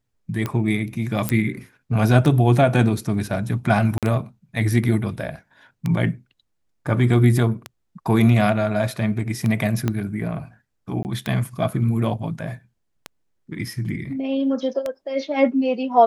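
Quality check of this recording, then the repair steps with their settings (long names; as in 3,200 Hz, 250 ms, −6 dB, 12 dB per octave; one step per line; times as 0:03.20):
scratch tick 33 1/3 rpm −12 dBFS
0:01.29: click −6 dBFS
0:03.98–0:04.03: drop-out 47 ms
0:09.88: click −9 dBFS
0:11.03–0:11.05: drop-out 19 ms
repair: click removal
repair the gap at 0:03.98, 47 ms
repair the gap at 0:11.03, 19 ms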